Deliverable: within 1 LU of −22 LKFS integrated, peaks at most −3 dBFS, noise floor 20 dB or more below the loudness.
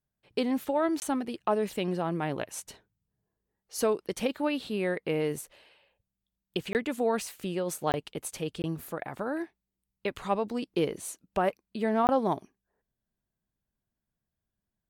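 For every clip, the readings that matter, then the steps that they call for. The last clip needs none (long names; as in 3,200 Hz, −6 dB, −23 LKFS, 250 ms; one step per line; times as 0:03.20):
number of dropouts 5; longest dropout 19 ms; integrated loudness −31.5 LKFS; sample peak −14.5 dBFS; target loudness −22.0 LKFS
→ repair the gap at 0:01.00/0:06.73/0:07.92/0:08.62/0:12.07, 19 ms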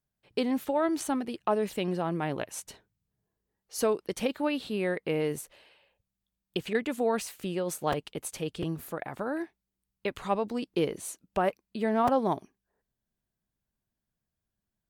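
number of dropouts 0; integrated loudness −31.0 LKFS; sample peak −14.0 dBFS; target loudness −22.0 LKFS
→ level +9 dB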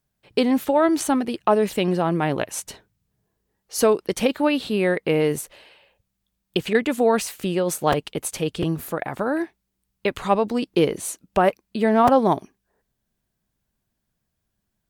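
integrated loudness −22.0 LKFS; sample peak −5.0 dBFS; background noise floor −78 dBFS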